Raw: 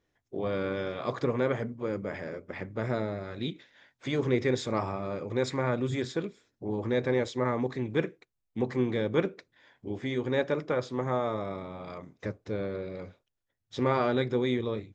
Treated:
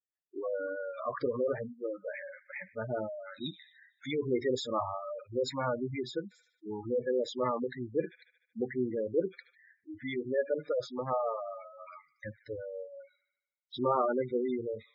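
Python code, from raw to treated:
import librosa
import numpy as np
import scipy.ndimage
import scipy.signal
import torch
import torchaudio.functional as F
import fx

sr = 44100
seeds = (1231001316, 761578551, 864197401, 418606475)

p1 = fx.noise_reduce_blind(x, sr, reduce_db=28)
p2 = fx.low_shelf(p1, sr, hz=320.0, db=-11.0)
p3 = p2 + fx.echo_wet_highpass(p2, sr, ms=75, feedback_pct=59, hz=1700.0, wet_db=-16.5, dry=0)
p4 = fx.spec_gate(p3, sr, threshold_db=-10, keep='strong')
y = p4 * 10.0 ** (2.5 / 20.0)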